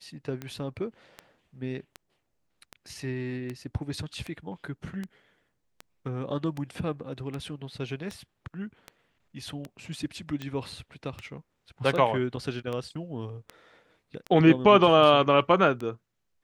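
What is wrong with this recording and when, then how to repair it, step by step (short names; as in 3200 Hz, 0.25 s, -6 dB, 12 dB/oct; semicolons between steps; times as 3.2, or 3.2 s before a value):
tick 78 rpm -22 dBFS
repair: de-click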